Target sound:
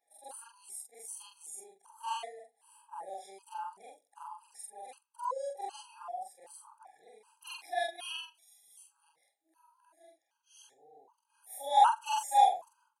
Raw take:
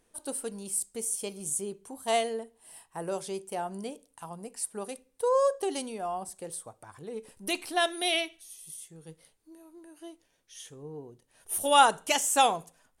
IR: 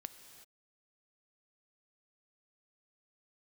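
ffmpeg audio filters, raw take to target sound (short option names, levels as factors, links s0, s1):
-af "afftfilt=real='re':imag='-im':win_size=4096:overlap=0.75,highpass=f=850:t=q:w=4.9,afftfilt=real='re*gt(sin(2*PI*1.3*pts/sr)*(1-2*mod(floor(b*sr/1024/820),2)),0)':imag='im*gt(sin(2*PI*1.3*pts/sr)*(1-2*mod(floor(b*sr/1024/820),2)),0)':win_size=1024:overlap=0.75,volume=0.562"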